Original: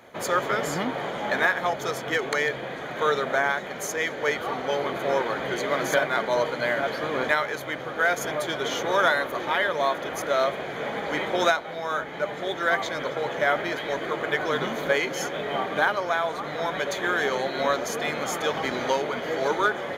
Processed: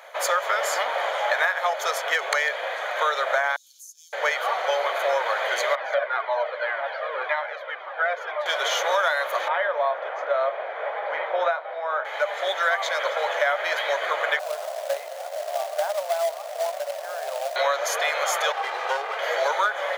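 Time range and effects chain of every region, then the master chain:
0:03.56–0:04.13: inverse Chebyshev high-pass filter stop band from 2,100 Hz, stop band 50 dB + downward compressor 2.5 to 1, threshold −55 dBFS
0:05.75–0:08.46: high-frequency loss of the air 330 metres + flanger whose copies keep moving one way falling 1.9 Hz
0:09.48–0:12.05: head-to-tape spacing loss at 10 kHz 42 dB + double-tracking delay 28 ms −12 dB
0:14.39–0:17.56: resonant band-pass 650 Hz, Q 6.3 + log-companded quantiser 4 bits
0:18.52–0:19.19: lower of the sound and its delayed copy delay 2.5 ms + high-shelf EQ 2,300 Hz −11.5 dB
whole clip: elliptic high-pass filter 560 Hz, stop band 80 dB; downward compressor, threshold −26 dBFS; level +7 dB

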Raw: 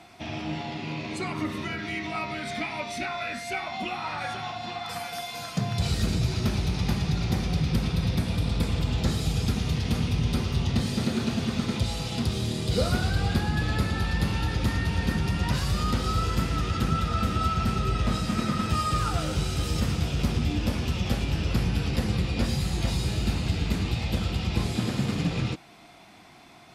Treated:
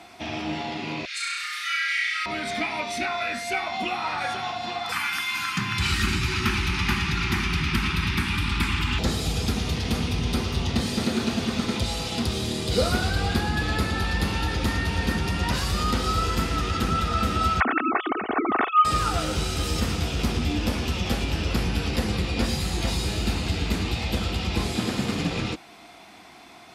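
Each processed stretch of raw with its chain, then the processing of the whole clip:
0:01.05–0:02.26: Chebyshev high-pass with heavy ripple 1,300 Hz, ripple 3 dB + comb filter 5.7 ms, depth 74% + flutter between parallel walls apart 5.7 metres, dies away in 1.3 s
0:04.92–0:08.99: elliptic band-stop filter 380–830 Hz + flat-topped bell 1,800 Hz +9.5 dB
0:17.60–0:18.85: three sine waves on the formant tracks + comb filter 2.7 ms, depth 56%
whole clip: high-pass filter 50 Hz; parametric band 130 Hz −9.5 dB 1 octave; notch filter 580 Hz, Q 18; level +4.5 dB

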